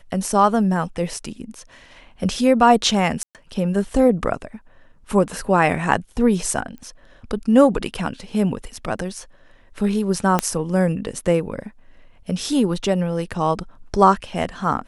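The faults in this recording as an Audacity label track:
3.230000	3.350000	gap 0.118 s
6.780000	6.780000	pop -26 dBFS
10.390000	10.390000	pop -4 dBFS

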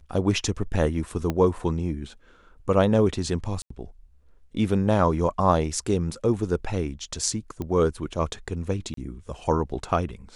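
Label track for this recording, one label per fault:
1.300000	1.300000	pop -13 dBFS
3.620000	3.700000	gap 84 ms
7.620000	7.620000	pop -19 dBFS
8.940000	8.970000	gap 33 ms

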